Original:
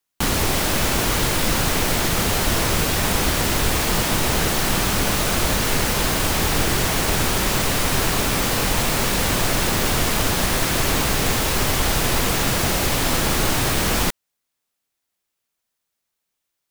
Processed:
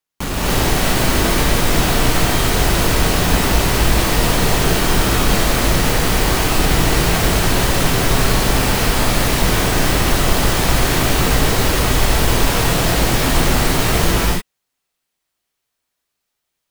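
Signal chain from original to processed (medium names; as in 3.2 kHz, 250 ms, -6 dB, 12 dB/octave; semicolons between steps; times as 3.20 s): square wave that keeps the level; gated-style reverb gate 320 ms rising, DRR -6.5 dB; trim -8 dB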